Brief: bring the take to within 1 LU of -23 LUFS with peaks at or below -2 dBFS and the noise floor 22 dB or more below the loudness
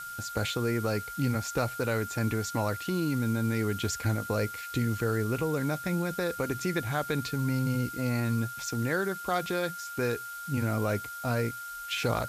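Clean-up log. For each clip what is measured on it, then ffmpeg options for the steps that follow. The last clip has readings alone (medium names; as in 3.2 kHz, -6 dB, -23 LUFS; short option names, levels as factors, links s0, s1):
steady tone 1.4 kHz; tone level -38 dBFS; noise floor -40 dBFS; noise floor target -53 dBFS; loudness -30.5 LUFS; peak level -15.5 dBFS; loudness target -23.0 LUFS
-> -af "bandreject=f=1400:w=30"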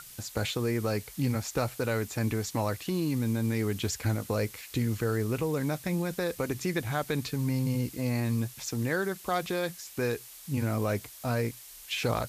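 steady tone not found; noise floor -48 dBFS; noise floor target -53 dBFS
-> -af "afftdn=nr=6:nf=-48"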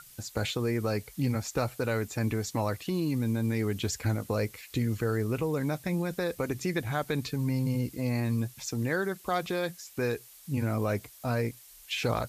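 noise floor -53 dBFS; loudness -31.0 LUFS; peak level -15.5 dBFS; loudness target -23.0 LUFS
-> -af "volume=2.51"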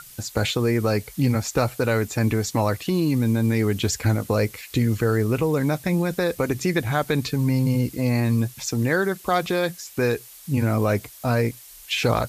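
loudness -23.0 LUFS; peak level -7.5 dBFS; noise floor -45 dBFS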